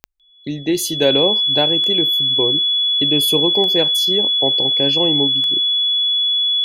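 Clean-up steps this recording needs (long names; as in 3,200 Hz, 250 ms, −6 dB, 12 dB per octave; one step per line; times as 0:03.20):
click removal
notch filter 3,400 Hz, Q 30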